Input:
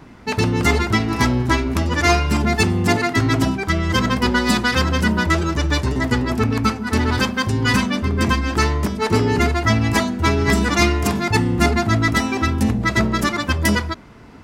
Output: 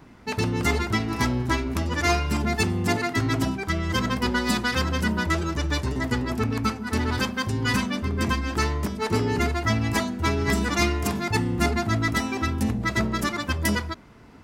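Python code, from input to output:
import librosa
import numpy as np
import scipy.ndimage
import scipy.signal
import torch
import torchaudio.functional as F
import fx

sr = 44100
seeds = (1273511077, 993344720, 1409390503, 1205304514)

y = fx.high_shelf(x, sr, hz=11000.0, db=5.0)
y = y * 10.0 ** (-6.5 / 20.0)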